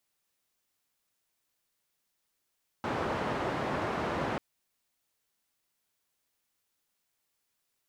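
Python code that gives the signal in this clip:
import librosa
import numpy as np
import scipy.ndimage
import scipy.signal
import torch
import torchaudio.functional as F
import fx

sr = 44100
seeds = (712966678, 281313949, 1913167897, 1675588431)

y = fx.band_noise(sr, seeds[0], length_s=1.54, low_hz=84.0, high_hz=1000.0, level_db=-32.5)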